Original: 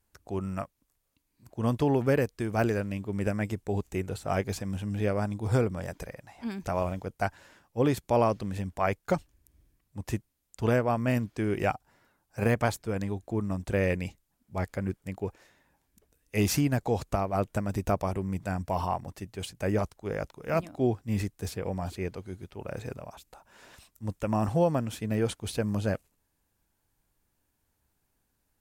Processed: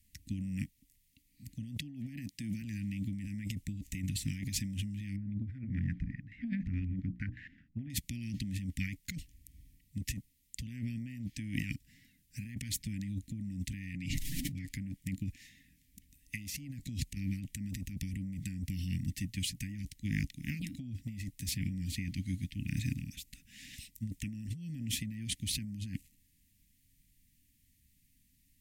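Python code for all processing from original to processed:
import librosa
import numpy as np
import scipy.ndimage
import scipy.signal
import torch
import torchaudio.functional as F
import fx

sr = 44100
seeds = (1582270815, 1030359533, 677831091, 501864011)

y = fx.chain(x, sr, fx.highpass(hz=170.0, slope=12),
    fx.low_shelf(hz=260.0, db=7.0), at=(1.78, 2.62))
y = fx.chain(y, sr, fx.hum_notches(base_hz=60, count=8),
    fx.filter_held_lowpass(hz=9.5, low_hz=790.0, high_hz=1700.0), at=(5.16, 7.9))
y = fx.chain(y, sr, fx.high_shelf(hz=10000.0, db=-11.5),
    fx.comb(ms=7.2, depth=0.92),
    fx.pre_swell(db_per_s=25.0), at=(13.93, 14.71))
y = scipy.signal.sosfilt(scipy.signal.cheby1(5, 1.0, [280.0, 1900.0], 'bandstop', fs=sr, output='sos'), y)
y = fx.over_compress(y, sr, threshold_db=-39.0, ratio=-1.0)
y = F.gain(torch.from_numpy(y), 1.0).numpy()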